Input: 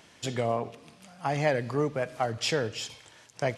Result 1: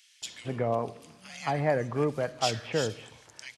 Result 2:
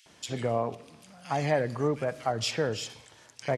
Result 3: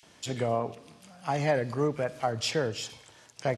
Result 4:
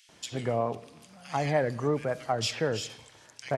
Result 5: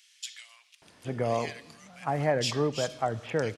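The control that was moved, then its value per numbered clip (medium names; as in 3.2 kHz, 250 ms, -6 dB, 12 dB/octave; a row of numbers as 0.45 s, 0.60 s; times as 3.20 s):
bands offset in time, time: 220 ms, 60 ms, 30 ms, 90 ms, 820 ms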